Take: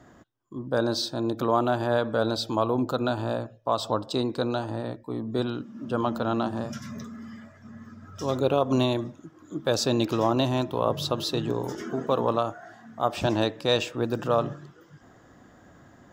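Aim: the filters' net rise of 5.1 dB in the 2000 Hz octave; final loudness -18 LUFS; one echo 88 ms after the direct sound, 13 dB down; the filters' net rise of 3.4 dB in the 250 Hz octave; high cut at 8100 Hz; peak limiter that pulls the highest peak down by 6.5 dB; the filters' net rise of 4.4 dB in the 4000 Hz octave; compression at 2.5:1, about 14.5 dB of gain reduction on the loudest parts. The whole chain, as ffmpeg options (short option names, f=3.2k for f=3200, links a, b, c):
-af "lowpass=8.1k,equalizer=f=250:t=o:g=4,equalizer=f=2k:t=o:g=6.5,equalizer=f=4k:t=o:g=3.5,acompressor=threshold=-39dB:ratio=2.5,alimiter=level_in=2dB:limit=-24dB:level=0:latency=1,volume=-2dB,aecho=1:1:88:0.224,volume=20.5dB"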